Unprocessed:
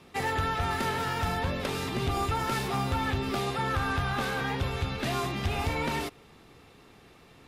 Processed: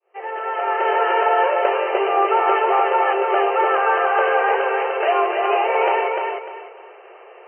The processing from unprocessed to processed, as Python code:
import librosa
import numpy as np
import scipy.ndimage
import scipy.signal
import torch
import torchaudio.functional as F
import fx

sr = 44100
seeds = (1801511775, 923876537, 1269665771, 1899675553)

p1 = fx.fade_in_head(x, sr, length_s=1.04)
p2 = fx.brickwall_bandpass(p1, sr, low_hz=350.0, high_hz=3100.0)
p3 = fx.peak_eq(p2, sr, hz=620.0, db=10.0, octaves=1.4)
p4 = p3 + fx.echo_feedback(p3, sr, ms=299, feedback_pct=27, wet_db=-4.0, dry=0)
y = F.gain(torch.from_numpy(p4), 7.5).numpy()